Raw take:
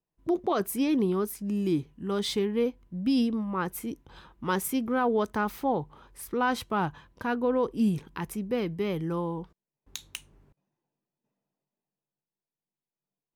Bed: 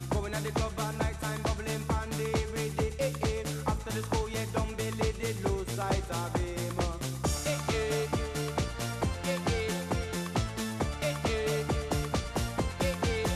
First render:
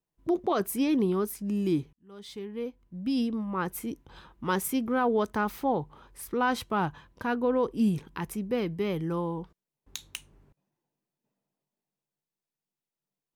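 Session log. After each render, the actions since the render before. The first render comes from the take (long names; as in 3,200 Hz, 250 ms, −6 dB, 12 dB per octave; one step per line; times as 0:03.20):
0:01.93–0:03.70: fade in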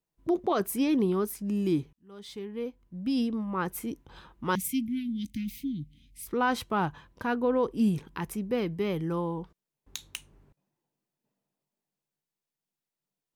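0:04.55–0:06.27: Chebyshev band-stop filter 290–2,100 Hz, order 5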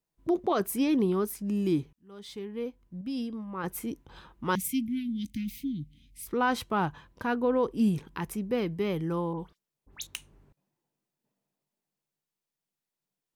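0:03.01–0:03.64: tuned comb filter 540 Hz, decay 0.22 s, mix 50%
0:09.33–0:10.07: all-pass dispersion highs, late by 67 ms, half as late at 2,400 Hz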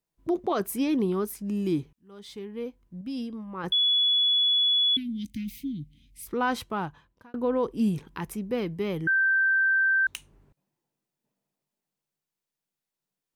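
0:03.72–0:04.97: beep over 3,400 Hz −19.5 dBFS
0:06.56–0:07.34: fade out
0:09.07–0:10.07: beep over 1,560 Hz −19.5 dBFS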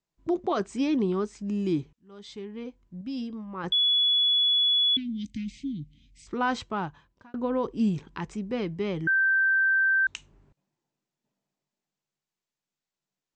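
Butterworth low-pass 8,000 Hz 96 dB per octave
notch filter 480 Hz, Q 15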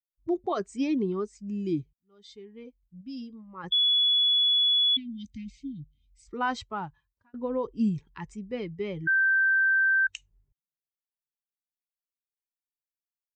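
spectral dynamics exaggerated over time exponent 1.5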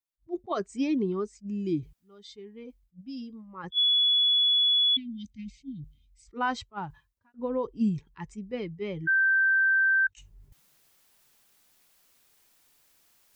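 reversed playback
upward compression, threshold −40 dBFS
reversed playback
level that may rise only so fast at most 420 dB per second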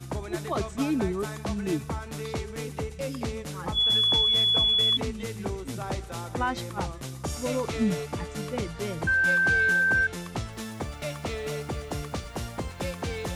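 mix in bed −2.5 dB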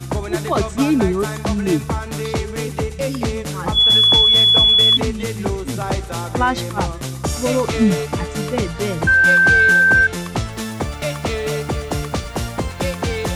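level +10.5 dB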